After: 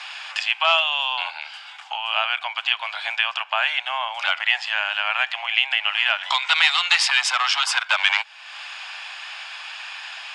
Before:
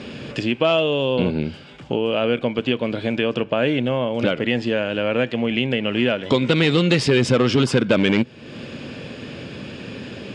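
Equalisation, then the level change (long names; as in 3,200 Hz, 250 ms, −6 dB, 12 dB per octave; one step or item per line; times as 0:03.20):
Butterworth high-pass 750 Hz 72 dB per octave
+6.0 dB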